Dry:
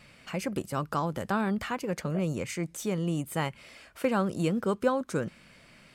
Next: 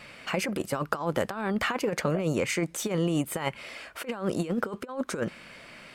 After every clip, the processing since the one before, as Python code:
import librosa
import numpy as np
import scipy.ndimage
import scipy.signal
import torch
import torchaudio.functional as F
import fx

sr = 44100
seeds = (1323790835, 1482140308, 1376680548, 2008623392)

y = fx.bass_treble(x, sr, bass_db=-9, treble_db=-5)
y = fx.over_compress(y, sr, threshold_db=-34.0, ratio=-0.5)
y = y * 10.0 ** (6.5 / 20.0)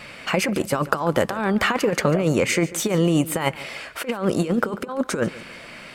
y = fx.echo_feedback(x, sr, ms=143, feedback_pct=40, wet_db=-18.0)
y = y * 10.0 ** (7.5 / 20.0)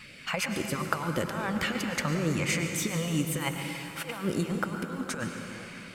y = fx.phaser_stages(x, sr, stages=2, low_hz=290.0, high_hz=1000.0, hz=1.9, feedback_pct=0)
y = fx.rev_plate(y, sr, seeds[0], rt60_s=3.5, hf_ratio=0.7, predelay_ms=90, drr_db=4.5)
y = y * 10.0 ** (-6.0 / 20.0)